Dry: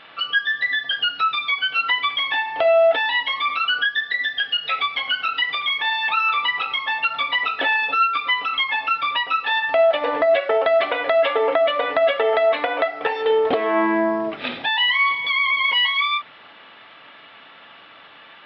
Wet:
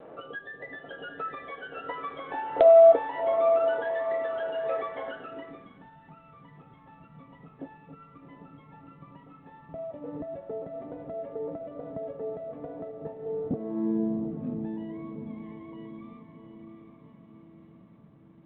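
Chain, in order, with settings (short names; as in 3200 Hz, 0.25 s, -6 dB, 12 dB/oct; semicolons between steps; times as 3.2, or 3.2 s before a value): in parallel at -3 dB: compressor 5:1, threshold -34 dBFS, peak gain reduction 18 dB; on the sum: diffused feedback echo 0.751 s, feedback 54%, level -7.5 dB; low-pass sweep 490 Hz -> 170 Hz, 5.08–5.91; vibrato 0.38 Hz 9.2 cents; G.726 40 kbps 8000 Hz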